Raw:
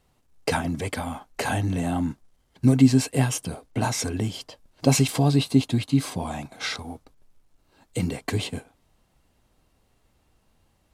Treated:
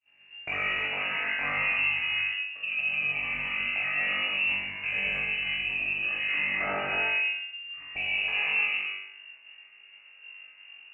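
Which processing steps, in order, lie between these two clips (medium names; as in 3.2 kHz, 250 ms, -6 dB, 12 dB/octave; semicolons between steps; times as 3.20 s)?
frequency inversion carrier 2.8 kHz; high-pass 100 Hz 6 dB/octave, from 7.98 s 820 Hz; compression 6:1, threshold -32 dBFS, peak gain reduction 20 dB; gated-style reverb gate 360 ms flat, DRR -4.5 dB; peak limiter -27.5 dBFS, peak gain reduction 10 dB; flutter echo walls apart 3.5 m, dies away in 0.7 s; expander -51 dBFS; trim +2.5 dB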